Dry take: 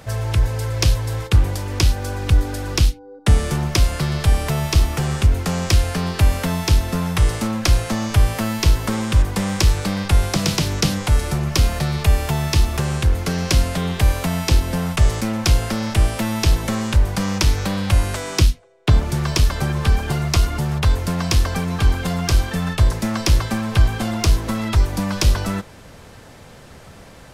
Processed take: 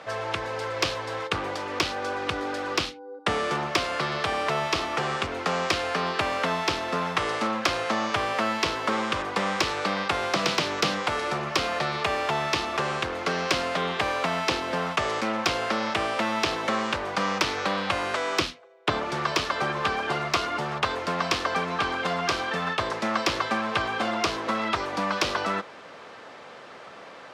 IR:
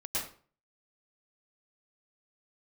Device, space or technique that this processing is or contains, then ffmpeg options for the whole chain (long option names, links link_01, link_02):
intercom: -af "highpass=410,lowpass=3700,equalizer=frequency=1200:width_type=o:width=0.25:gain=5,asoftclip=type=tanh:threshold=-13.5dB,volume=2dB"